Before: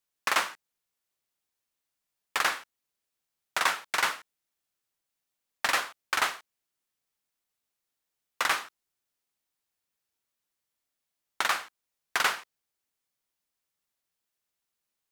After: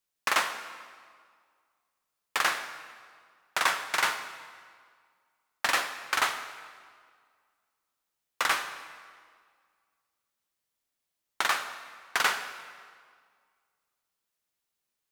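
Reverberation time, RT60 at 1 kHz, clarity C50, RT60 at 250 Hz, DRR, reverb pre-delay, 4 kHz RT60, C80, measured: 1.9 s, 1.9 s, 9.5 dB, 1.9 s, 8.5 dB, 14 ms, 1.5 s, 10.5 dB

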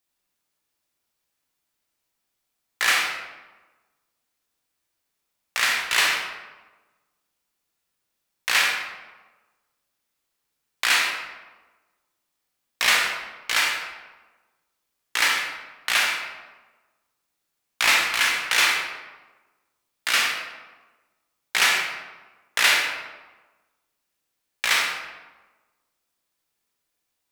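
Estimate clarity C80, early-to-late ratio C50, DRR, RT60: 5.0 dB, 2.0 dB, -0.5 dB, 1.2 s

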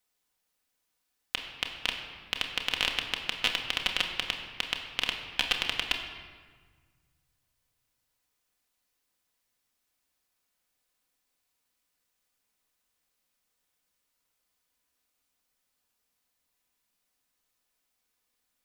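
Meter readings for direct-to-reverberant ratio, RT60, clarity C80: 1.5 dB, 1.5 s, 7.0 dB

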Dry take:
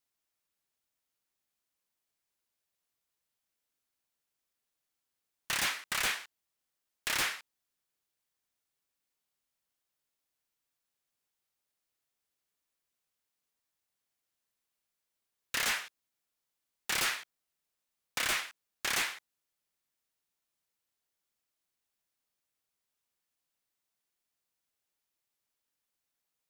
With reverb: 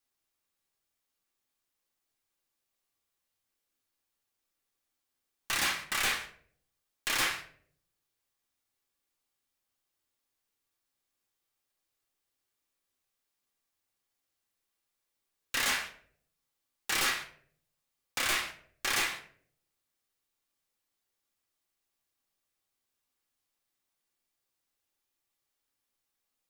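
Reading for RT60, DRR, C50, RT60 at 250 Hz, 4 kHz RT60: 0.60 s, 2.0 dB, 10.5 dB, 0.70 s, 0.35 s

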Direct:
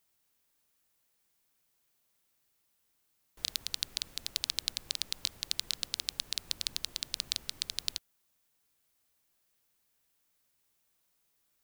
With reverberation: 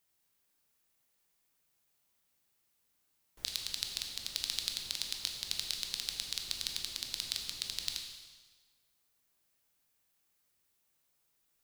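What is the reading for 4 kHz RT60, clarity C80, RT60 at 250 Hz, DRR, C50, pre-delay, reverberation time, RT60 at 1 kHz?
1.3 s, 6.0 dB, 1.4 s, 2.0 dB, 4.5 dB, 7 ms, 1.4 s, 1.4 s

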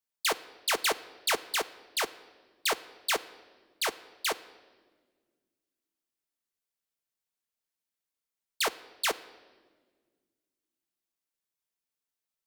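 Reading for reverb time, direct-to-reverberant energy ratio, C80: 1.5 s, 9.0 dB, 18.5 dB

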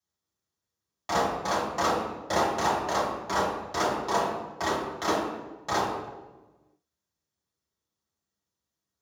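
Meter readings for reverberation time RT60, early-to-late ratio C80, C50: 1.2 s, 4.5 dB, 1.5 dB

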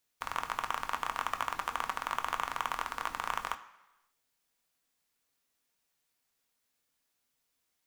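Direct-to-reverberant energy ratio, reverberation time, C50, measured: 6.0 dB, 1.0 s, 13.5 dB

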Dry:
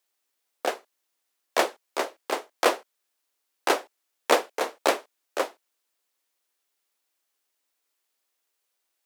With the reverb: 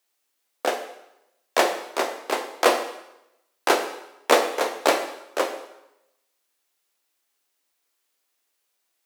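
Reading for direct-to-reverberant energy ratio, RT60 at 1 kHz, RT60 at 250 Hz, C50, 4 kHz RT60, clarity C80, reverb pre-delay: 5.0 dB, 0.90 s, 0.85 s, 8.5 dB, 0.80 s, 10.5 dB, 5 ms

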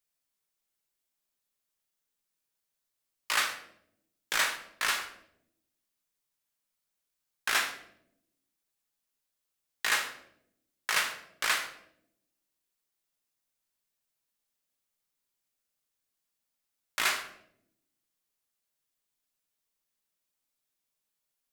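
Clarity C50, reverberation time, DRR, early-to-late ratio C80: 9.0 dB, 0.75 s, 4.0 dB, 12.5 dB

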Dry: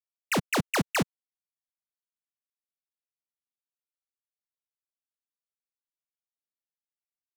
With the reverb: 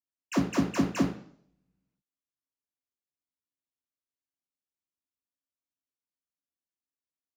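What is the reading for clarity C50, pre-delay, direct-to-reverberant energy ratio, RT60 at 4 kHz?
6.5 dB, 3 ms, -6.5 dB, 0.60 s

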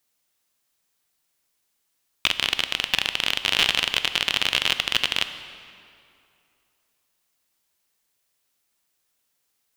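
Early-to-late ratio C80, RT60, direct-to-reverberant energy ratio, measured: 11.5 dB, 2.6 s, 10.0 dB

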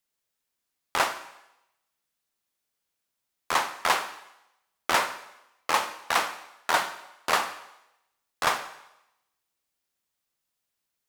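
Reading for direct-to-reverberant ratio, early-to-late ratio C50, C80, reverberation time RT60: 10.5 dB, 12.5 dB, 14.5 dB, 0.85 s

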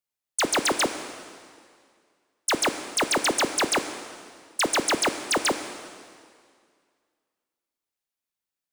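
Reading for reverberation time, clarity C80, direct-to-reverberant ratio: 2.1 s, 10.5 dB, 8.0 dB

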